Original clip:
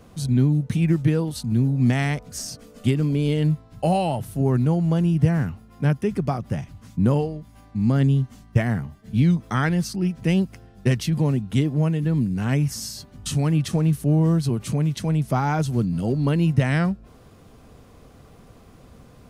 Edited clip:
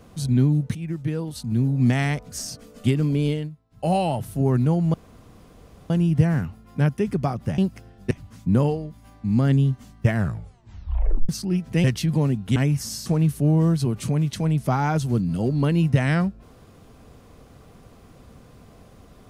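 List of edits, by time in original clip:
0.75–1.79 s: fade in, from -13.5 dB
3.26–3.94 s: dip -19 dB, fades 0.24 s
4.94 s: insert room tone 0.96 s
8.61 s: tape stop 1.19 s
10.35–10.88 s: move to 6.62 s
11.60–12.47 s: delete
12.97–13.70 s: delete

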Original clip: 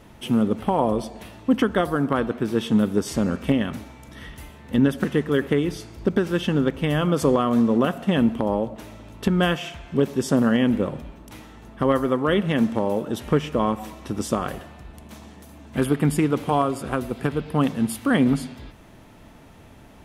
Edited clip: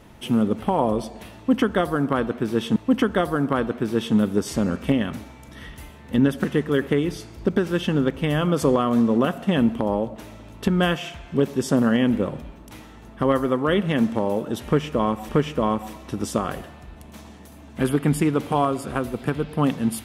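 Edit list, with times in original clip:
1.36–2.76 s: loop, 2 plays
13.26–13.89 s: loop, 2 plays

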